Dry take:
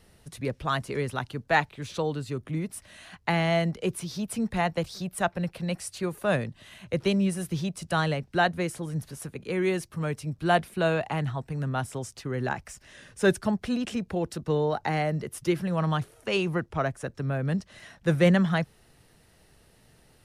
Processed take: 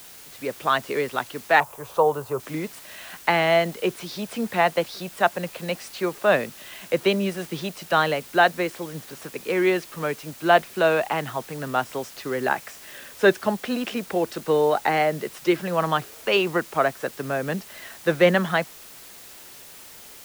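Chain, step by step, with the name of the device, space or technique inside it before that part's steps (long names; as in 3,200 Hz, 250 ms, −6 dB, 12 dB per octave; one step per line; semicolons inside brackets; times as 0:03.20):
dictaphone (band-pass filter 330–4,100 Hz; automatic gain control gain up to 10 dB; tape wow and flutter 24 cents; white noise bed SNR 20 dB)
0:01.60–0:02.40: octave-band graphic EQ 125/250/500/1,000/2,000/4,000 Hz +7/−11/+5/+11/−10/−10 dB
level −2 dB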